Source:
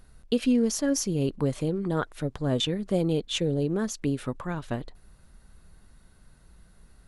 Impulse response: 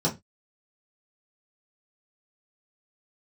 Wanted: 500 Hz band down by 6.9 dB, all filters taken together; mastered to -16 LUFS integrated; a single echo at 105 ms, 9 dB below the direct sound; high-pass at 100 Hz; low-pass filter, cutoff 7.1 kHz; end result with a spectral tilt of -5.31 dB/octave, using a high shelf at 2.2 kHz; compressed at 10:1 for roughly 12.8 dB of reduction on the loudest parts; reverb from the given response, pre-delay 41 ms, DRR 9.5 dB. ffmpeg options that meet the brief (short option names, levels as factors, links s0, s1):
-filter_complex "[0:a]highpass=100,lowpass=7100,equalizer=f=500:t=o:g=-8.5,highshelf=f=2200:g=3,acompressor=threshold=0.02:ratio=10,aecho=1:1:105:0.355,asplit=2[s0][s1];[1:a]atrim=start_sample=2205,adelay=41[s2];[s1][s2]afir=irnorm=-1:irlink=0,volume=0.1[s3];[s0][s3]amix=inputs=2:normalize=0,volume=9.44"